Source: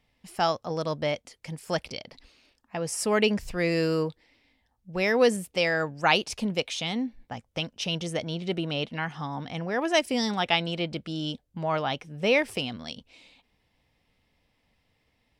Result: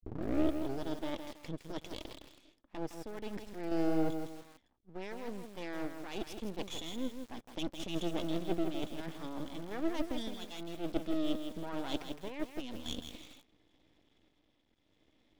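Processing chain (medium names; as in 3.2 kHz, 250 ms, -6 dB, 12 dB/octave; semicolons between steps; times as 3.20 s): tape start-up on the opening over 0.84 s; reverse; compression 20:1, threshold -36 dBFS, peak gain reduction 21.5 dB; reverse; low-pass 5.7 kHz 12 dB/octave; small resonant body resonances 320/3400 Hz, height 18 dB, ringing for 40 ms; half-wave rectifier; random-step tremolo; bit-crushed delay 162 ms, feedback 35%, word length 8-bit, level -7 dB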